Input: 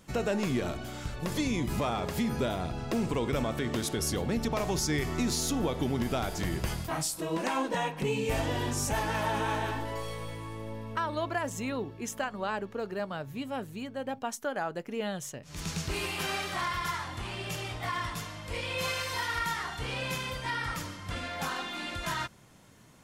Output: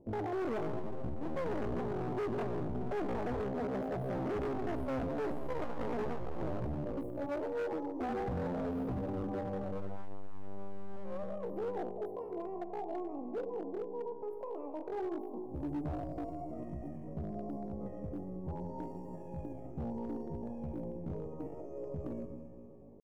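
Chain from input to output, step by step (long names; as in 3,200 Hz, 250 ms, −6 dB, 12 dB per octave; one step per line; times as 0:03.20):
four-comb reverb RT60 2.6 s, combs from 30 ms, DRR 4.5 dB
pitch shifter +10 semitones
inverse Chebyshev low-pass filter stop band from 1,400 Hz, stop band 40 dB
hard clipping −33 dBFS, distortion −8 dB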